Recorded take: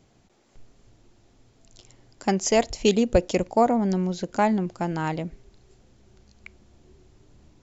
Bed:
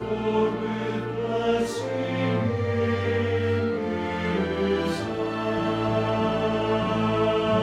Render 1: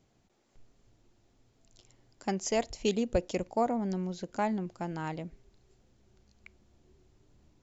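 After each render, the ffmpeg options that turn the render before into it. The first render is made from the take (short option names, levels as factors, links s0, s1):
-af "volume=0.355"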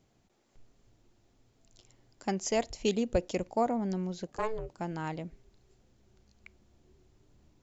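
-filter_complex "[0:a]asettb=1/sr,asplit=3[s0][s1][s2];[s0]atrim=end=4.274[s3];[s1]atrim=start=4.27:end=4.78,asetpts=PTS-STARTPTS,afade=t=in:d=0.004:c=qsin,afade=t=out:st=0.506:d=0.004:c=qsin,aeval=exprs='val(0)*sin(2*PI*220*n/s)':c=same[s4];[s2]atrim=start=4.776[s5];[s3][s4]acrossfade=d=0.004:c1=hsin:c2=qsin[s6];[s6][s5]acrossfade=d=0.004:c1=qsin:c2=hsin"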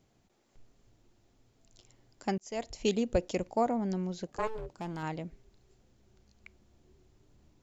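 -filter_complex "[0:a]asettb=1/sr,asplit=3[s0][s1][s2];[s0]atrim=end=4.474[s3];[s1]atrim=start=4.47:end=5.03,asetpts=PTS-STARTPTS,afade=t=in:d=0.004:c=qsin,afade=t=out:st=0.556:d=0.004:c=qsin,asoftclip=type=hard:threshold=0.02[s4];[s2]atrim=start=5.026[s5];[s3][s4]acrossfade=d=0.004:c1=hsin:c2=qsin[s6];[s6][s5]acrossfade=d=0.004:c1=qsin:c2=hsin,asplit=2[s7][s8];[s7]atrim=end=2.38,asetpts=PTS-STARTPTS,afade=t=out:st=2.376:d=0.004:c=hsin[s9];[s8]atrim=start=2.38,asetpts=PTS-STARTPTS,afade=t=in:d=0.44[s10];[s9][s10]concat=n=2:v=0:a=1"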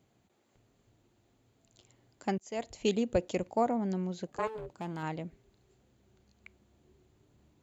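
-af "highpass=66,equalizer=f=5400:t=o:w=0.32:g=-8"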